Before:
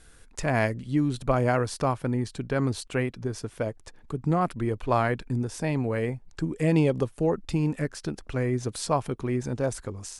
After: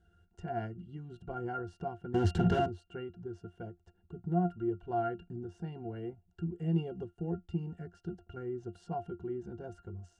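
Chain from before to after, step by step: 2.14–2.66 fuzz box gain 49 dB, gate -48 dBFS; bell 6800 Hz +7 dB 1 oct; octave resonator F, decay 0.13 s

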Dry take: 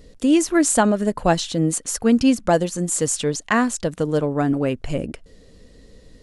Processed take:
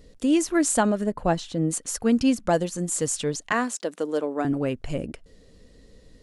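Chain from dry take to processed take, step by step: 1.04–1.71 high shelf 2300 Hz -8.5 dB; 3.52–4.45 HPF 260 Hz 24 dB/oct; gain -4.5 dB

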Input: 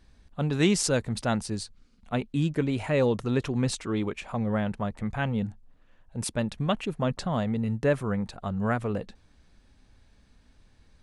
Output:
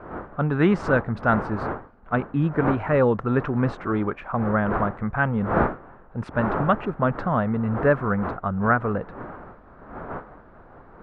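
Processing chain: wind noise 630 Hz -38 dBFS; synth low-pass 1400 Hz, resonance Q 2.8; gain +3.5 dB

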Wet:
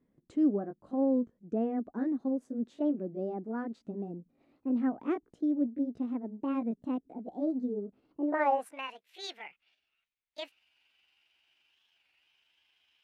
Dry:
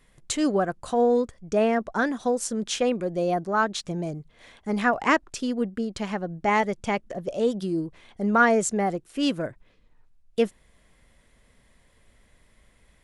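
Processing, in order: gliding pitch shift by +7.5 st starting unshifted; band-pass sweep 270 Hz -> 2600 Hz, 8.17–8.85; record warp 33 1/3 rpm, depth 160 cents

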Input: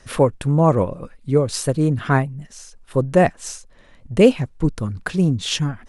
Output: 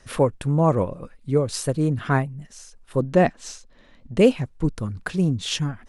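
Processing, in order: 3–4.18 fifteen-band EQ 100 Hz -5 dB, 250 Hz +6 dB, 4000 Hz +4 dB, 10000 Hz -10 dB; gain -3.5 dB

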